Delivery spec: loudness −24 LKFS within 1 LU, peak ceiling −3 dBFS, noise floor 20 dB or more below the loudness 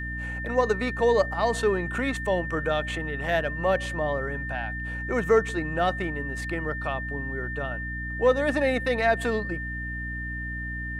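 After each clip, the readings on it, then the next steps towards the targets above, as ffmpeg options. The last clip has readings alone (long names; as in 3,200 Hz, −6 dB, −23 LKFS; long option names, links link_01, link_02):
mains hum 60 Hz; hum harmonics up to 300 Hz; level of the hum −33 dBFS; interfering tone 1,800 Hz; level of the tone −33 dBFS; integrated loudness −27.0 LKFS; sample peak −10.0 dBFS; target loudness −24.0 LKFS
→ -af "bandreject=frequency=60:width_type=h:width=4,bandreject=frequency=120:width_type=h:width=4,bandreject=frequency=180:width_type=h:width=4,bandreject=frequency=240:width_type=h:width=4,bandreject=frequency=300:width_type=h:width=4"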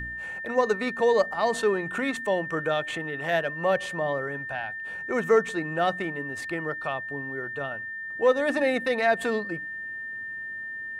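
mains hum none found; interfering tone 1,800 Hz; level of the tone −33 dBFS
→ -af "bandreject=frequency=1800:width=30"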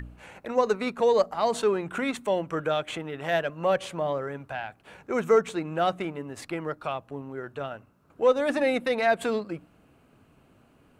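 interfering tone none found; integrated loudness −27.5 LKFS; sample peak −10.5 dBFS; target loudness −24.0 LKFS
→ -af "volume=3.5dB"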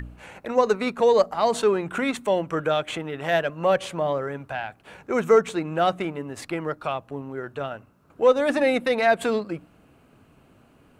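integrated loudness −24.0 LKFS; sample peak −7.0 dBFS; background noise floor −57 dBFS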